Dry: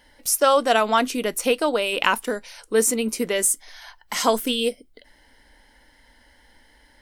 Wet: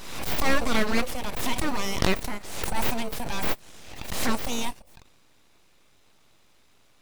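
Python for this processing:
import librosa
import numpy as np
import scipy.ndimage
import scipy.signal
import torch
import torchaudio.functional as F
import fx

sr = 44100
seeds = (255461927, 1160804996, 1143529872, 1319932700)

p1 = scipy.signal.sosfilt(scipy.signal.butter(2, 260.0, 'highpass', fs=sr, output='sos'), x)
p2 = fx.transient(p1, sr, attack_db=-7, sustain_db=1)
p3 = np.abs(p2)
p4 = fx.sample_hold(p3, sr, seeds[0], rate_hz=1700.0, jitter_pct=0)
p5 = p3 + F.gain(torch.from_numpy(p4), -6.0).numpy()
p6 = fx.pre_swell(p5, sr, db_per_s=52.0)
y = F.gain(torch.from_numpy(p6), -3.0).numpy()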